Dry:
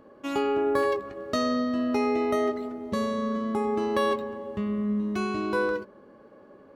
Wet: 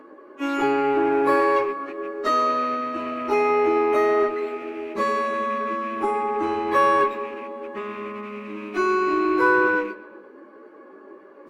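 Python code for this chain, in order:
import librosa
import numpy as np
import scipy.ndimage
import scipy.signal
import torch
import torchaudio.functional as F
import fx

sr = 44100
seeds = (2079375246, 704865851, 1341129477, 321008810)

p1 = fx.rattle_buzz(x, sr, strikes_db=-42.0, level_db=-36.0)
p2 = fx.highpass_res(p1, sr, hz=330.0, q=3.5)
p3 = fx.clip_asym(p2, sr, top_db=-27.0, bottom_db=-14.5)
p4 = p2 + (p3 * 10.0 ** (-9.0 / 20.0))
p5 = fx.band_shelf(p4, sr, hz=1500.0, db=8.5, octaves=1.7)
p6 = fx.stretch_vocoder_free(p5, sr, factor=1.7)
y = fx.echo_bbd(p6, sr, ms=124, stages=4096, feedback_pct=50, wet_db=-19)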